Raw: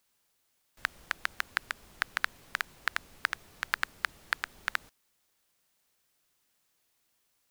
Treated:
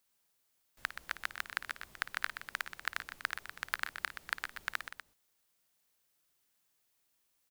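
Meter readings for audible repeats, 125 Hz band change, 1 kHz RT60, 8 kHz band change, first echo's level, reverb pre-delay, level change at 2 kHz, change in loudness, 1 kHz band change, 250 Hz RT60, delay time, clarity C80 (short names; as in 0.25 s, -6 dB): 3, -4.5 dB, none, -3.0 dB, -14.5 dB, none, -4.5 dB, -4.5 dB, -4.5 dB, none, 55 ms, none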